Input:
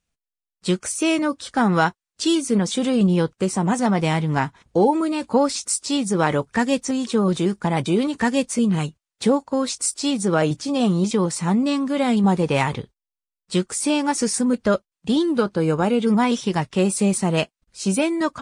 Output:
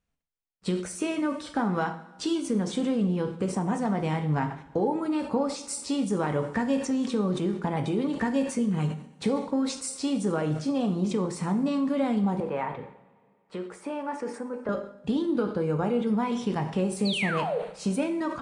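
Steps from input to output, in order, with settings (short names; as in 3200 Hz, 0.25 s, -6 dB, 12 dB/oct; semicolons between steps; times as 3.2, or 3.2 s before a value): high shelf 2900 Hz -11.5 dB; 17.05–17.59 painted sound fall 430–4700 Hz -23 dBFS; compressor 3:1, threshold -25 dBFS, peak gain reduction 9.5 dB; 12.4–14.69 three-band isolator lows -14 dB, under 370 Hz, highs -18 dB, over 2300 Hz; two-slope reverb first 0.55 s, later 2.1 s, from -17 dB, DRR 6 dB; sustainer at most 110 dB/s; gain -1.5 dB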